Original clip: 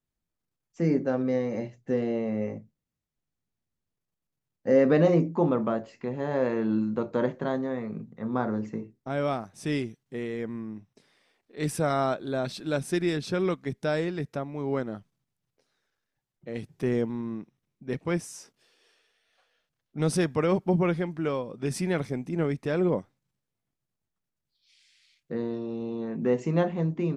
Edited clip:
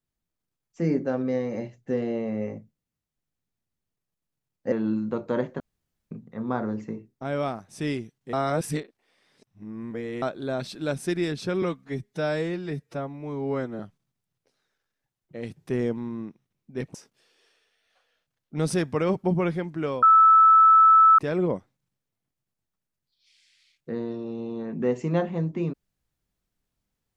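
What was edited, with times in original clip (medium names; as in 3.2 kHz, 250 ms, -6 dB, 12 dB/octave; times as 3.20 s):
4.72–6.57 s: delete
7.45–7.96 s: room tone
10.18–12.07 s: reverse
13.47–14.92 s: stretch 1.5×
18.07–18.37 s: delete
21.45–22.61 s: bleep 1.31 kHz -11.5 dBFS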